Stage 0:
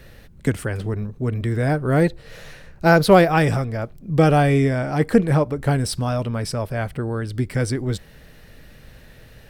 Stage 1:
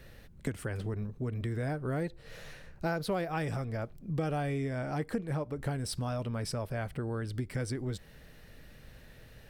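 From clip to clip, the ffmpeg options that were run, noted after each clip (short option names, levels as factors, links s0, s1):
-af "acompressor=threshold=0.0631:ratio=4,volume=0.422"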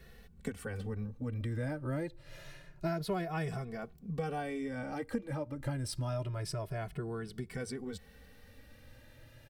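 -filter_complex "[0:a]asplit=2[s0][s1];[s1]adelay=2.3,afreqshift=0.27[s2];[s0][s2]amix=inputs=2:normalize=1"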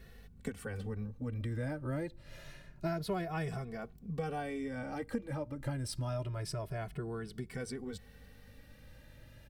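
-af "aeval=exprs='val(0)+0.00141*(sin(2*PI*50*n/s)+sin(2*PI*2*50*n/s)/2+sin(2*PI*3*50*n/s)/3+sin(2*PI*4*50*n/s)/4+sin(2*PI*5*50*n/s)/5)':c=same,volume=0.891"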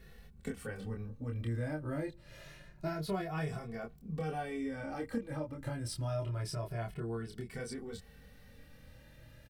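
-filter_complex "[0:a]asplit=2[s0][s1];[s1]adelay=26,volume=0.708[s2];[s0][s2]amix=inputs=2:normalize=0,volume=0.794"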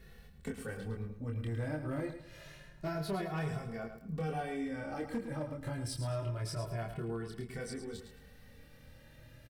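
-filter_complex "[0:a]volume=33.5,asoftclip=hard,volume=0.0299,asplit=2[s0][s1];[s1]aecho=0:1:108|216|324:0.355|0.106|0.0319[s2];[s0][s2]amix=inputs=2:normalize=0"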